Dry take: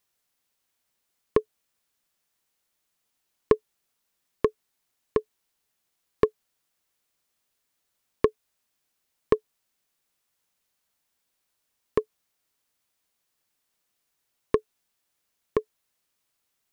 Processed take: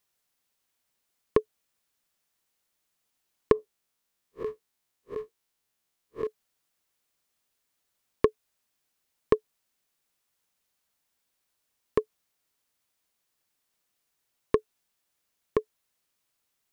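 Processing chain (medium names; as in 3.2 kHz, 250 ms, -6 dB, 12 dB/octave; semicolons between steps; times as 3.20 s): 3.52–6.27 s: spectral blur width 83 ms; trim -1 dB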